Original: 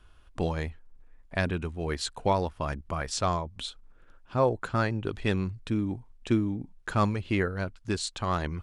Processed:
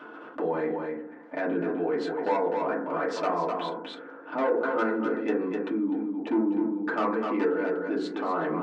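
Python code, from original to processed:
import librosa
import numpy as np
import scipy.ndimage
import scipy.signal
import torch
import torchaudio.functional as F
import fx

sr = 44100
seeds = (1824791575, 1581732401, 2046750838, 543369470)

p1 = scipy.signal.sosfilt(scipy.signal.butter(2, 2000.0, 'lowpass', fs=sr, output='sos'), x)
p2 = fx.peak_eq(p1, sr, hz=480.0, db=5.0, octaves=0.76)
p3 = fx.hum_notches(p2, sr, base_hz=60, count=9)
p4 = fx.level_steps(p3, sr, step_db=12)
p5 = 10.0 ** (-25.5 / 20.0) * np.tanh(p4 / 10.0 ** (-25.5 / 20.0))
p6 = fx.brickwall_highpass(p5, sr, low_hz=180.0)
p7 = p6 + fx.echo_single(p6, sr, ms=253, db=-8.5, dry=0)
p8 = fx.rev_fdn(p7, sr, rt60_s=0.44, lf_ratio=1.05, hf_ratio=0.25, size_ms=20.0, drr_db=-7.0)
p9 = fx.env_flatten(p8, sr, amount_pct=50)
y = F.gain(torch.from_numpy(p9), -4.0).numpy()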